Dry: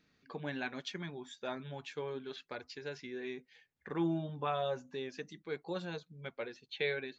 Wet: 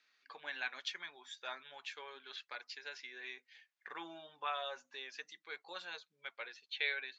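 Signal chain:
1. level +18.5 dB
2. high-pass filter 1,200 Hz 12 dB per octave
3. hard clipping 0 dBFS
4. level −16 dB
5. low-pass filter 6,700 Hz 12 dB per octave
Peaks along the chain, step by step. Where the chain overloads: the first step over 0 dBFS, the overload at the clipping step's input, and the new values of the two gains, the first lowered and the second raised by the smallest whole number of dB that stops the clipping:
−2.0, −5.5, −5.5, −21.5, −21.5 dBFS
no step passes full scale

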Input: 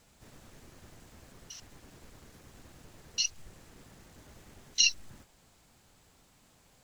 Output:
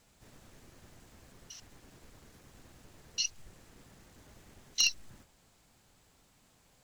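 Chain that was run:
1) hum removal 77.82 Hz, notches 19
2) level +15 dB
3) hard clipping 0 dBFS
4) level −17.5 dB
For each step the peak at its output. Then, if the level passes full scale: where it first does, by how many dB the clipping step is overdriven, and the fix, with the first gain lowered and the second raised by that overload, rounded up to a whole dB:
−9.5, +5.5, 0.0, −17.5 dBFS
step 2, 5.5 dB
step 2 +9 dB, step 4 −11.5 dB

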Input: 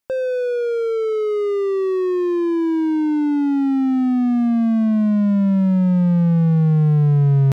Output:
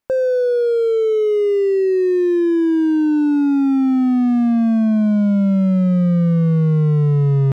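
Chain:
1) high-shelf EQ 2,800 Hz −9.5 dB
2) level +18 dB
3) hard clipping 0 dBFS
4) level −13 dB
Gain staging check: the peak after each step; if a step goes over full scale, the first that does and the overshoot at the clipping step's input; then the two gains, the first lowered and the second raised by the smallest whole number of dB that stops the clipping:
−9.0, +9.0, 0.0, −13.0 dBFS
step 2, 9.0 dB
step 2 +9 dB, step 4 −4 dB

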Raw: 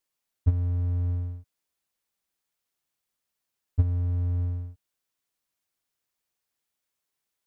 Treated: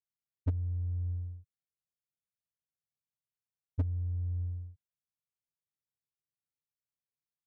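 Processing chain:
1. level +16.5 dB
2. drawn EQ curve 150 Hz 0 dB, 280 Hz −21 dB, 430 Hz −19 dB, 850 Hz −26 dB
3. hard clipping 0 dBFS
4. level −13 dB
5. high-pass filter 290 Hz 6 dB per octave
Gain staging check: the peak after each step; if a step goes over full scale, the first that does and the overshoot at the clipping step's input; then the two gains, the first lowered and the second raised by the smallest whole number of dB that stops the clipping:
+6.5, +4.5, 0.0, −13.0, −20.0 dBFS
step 1, 4.5 dB
step 1 +11.5 dB, step 4 −8 dB

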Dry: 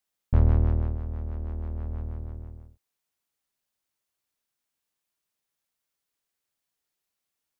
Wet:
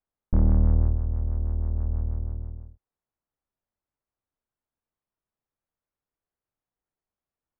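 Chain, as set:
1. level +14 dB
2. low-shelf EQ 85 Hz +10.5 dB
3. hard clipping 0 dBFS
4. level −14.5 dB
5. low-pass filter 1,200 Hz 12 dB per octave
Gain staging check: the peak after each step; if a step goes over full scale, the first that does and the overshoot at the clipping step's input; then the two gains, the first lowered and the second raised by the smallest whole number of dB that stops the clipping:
+3.5, +10.0, 0.0, −14.5, −14.5 dBFS
step 1, 10.0 dB
step 1 +4 dB, step 4 −4.5 dB

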